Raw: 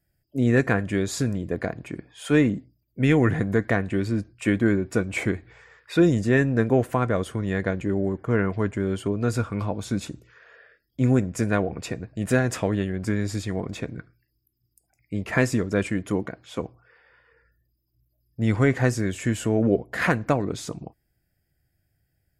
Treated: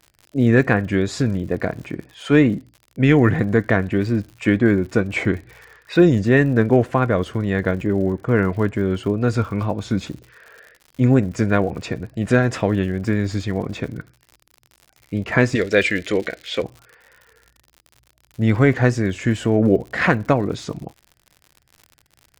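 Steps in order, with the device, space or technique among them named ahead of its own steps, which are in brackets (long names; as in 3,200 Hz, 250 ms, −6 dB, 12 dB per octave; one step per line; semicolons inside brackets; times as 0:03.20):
lo-fi chain (low-pass filter 5,100 Hz 12 dB per octave; tape wow and flutter; surface crackle 85 per second −39 dBFS)
0:15.55–0:16.64: octave-band graphic EQ 125/250/500/1,000/2,000/4,000/8,000 Hz −10/−4/+7/−9/+10/+10/+5 dB
level +5 dB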